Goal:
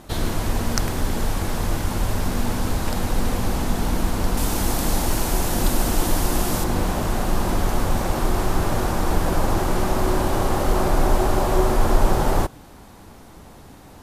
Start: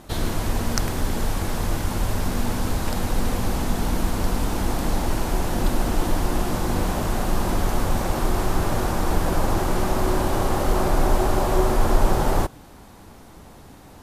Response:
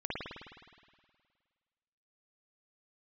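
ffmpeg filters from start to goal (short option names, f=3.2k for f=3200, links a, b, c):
-filter_complex "[0:a]asettb=1/sr,asplit=3[a][b][c];[a]atrim=end=4.374[d];[b]atrim=start=4.37:end=6.64,asetpts=PTS-STARTPTS,afade=t=in:d=0.004:c=qsin,afade=t=out:st=2.266:d=0.004:c=qsin,highshelf=f=4.5k:g=9.5[e];[c]atrim=start=6.636[f];[d][e]acrossfade=d=0.004:c1=hsin:c2=qsin[g];[g][f]acrossfade=d=0.004:c1=qsin:c2=hsin,volume=1dB"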